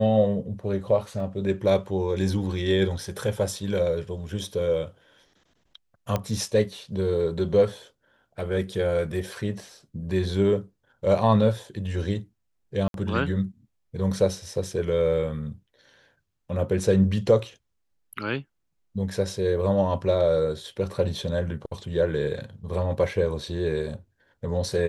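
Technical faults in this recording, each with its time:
1.2 gap 2.3 ms
6.16 pop -12 dBFS
12.88–12.94 gap 62 ms

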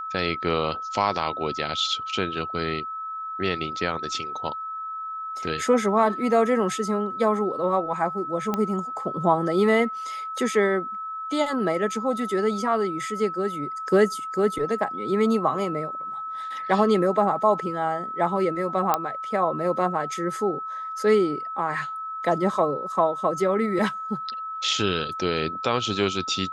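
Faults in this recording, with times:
tone 1300 Hz -30 dBFS
8.54 pop -12 dBFS
18.94 pop -7 dBFS

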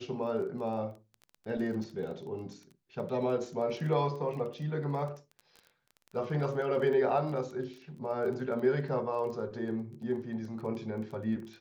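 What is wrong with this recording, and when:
crackle 18/s -40 dBFS

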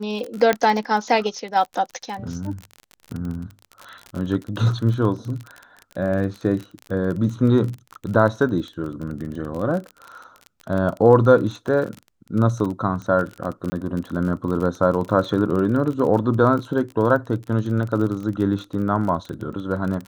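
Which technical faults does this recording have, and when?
crackle 34/s -27 dBFS
0.53 pop -6 dBFS
13.7–13.72 gap 20 ms

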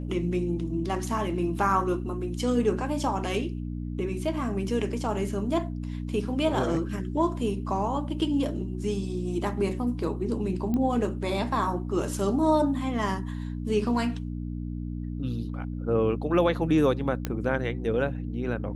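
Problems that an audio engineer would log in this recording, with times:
hum 60 Hz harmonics 5 -33 dBFS
10.74 pop -18 dBFS
17.25 pop -14 dBFS

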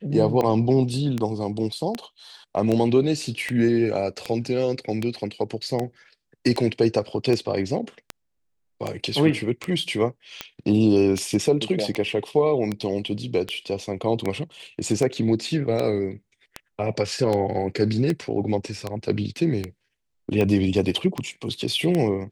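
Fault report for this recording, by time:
tick 78 rpm -12 dBFS

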